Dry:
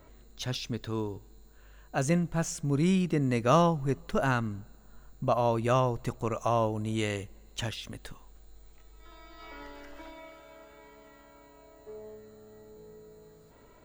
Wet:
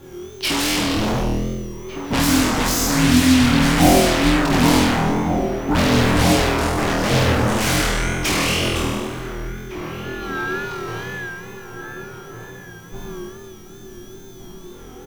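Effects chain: companding laws mixed up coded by A; de-hum 113.4 Hz, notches 36; on a send: flutter echo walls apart 3.8 m, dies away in 1.2 s; on the sum: frequency shift -450 Hz; speed mistake 48 kHz file played as 44.1 kHz; wow and flutter 76 cents; in parallel at -8 dB: sine folder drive 19 dB, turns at -15.5 dBFS; on the sum: echo from a far wall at 250 m, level -7 dB; trim +4.5 dB

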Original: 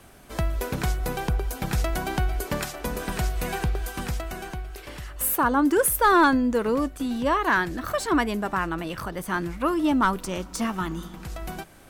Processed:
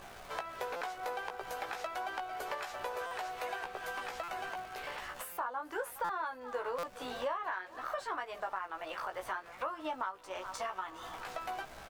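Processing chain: high-pass 610 Hz 24 dB/octave; peaking EQ 11 kHz -8.5 dB 1.6 oct; delay 413 ms -22.5 dB; crackle 580 per s -41 dBFS; doubling 16 ms -3 dB; compression 6:1, threshold -39 dBFS, peak gain reduction 23 dB; tilt EQ -2.5 dB/octave; buffer glitch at 0.76/3.06/4.23/5.32/6.04/6.78 s, samples 256, times 8; trim +3 dB

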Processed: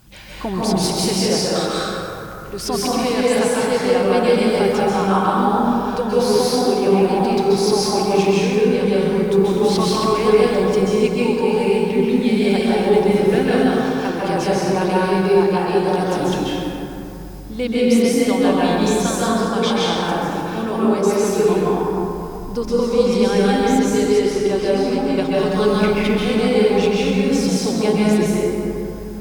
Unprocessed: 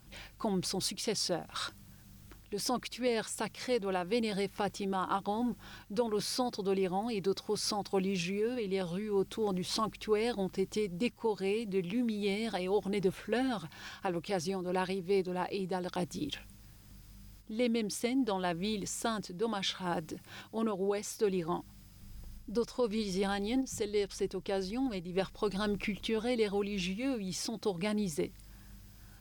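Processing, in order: plate-style reverb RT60 3.1 s, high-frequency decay 0.4×, pre-delay 120 ms, DRR -7.5 dB; trim +8 dB

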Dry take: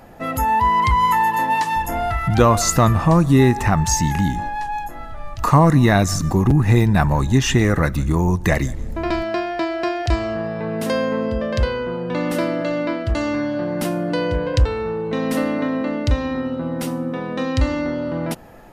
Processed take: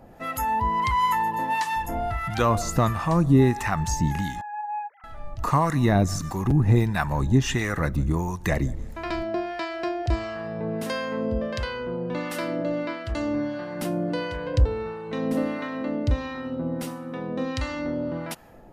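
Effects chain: 4.41–5.04 s: formants replaced by sine waves; harmonic tremolo 1.5 Hz, depth 70%, crossover 810 Hz; trim -3 dB

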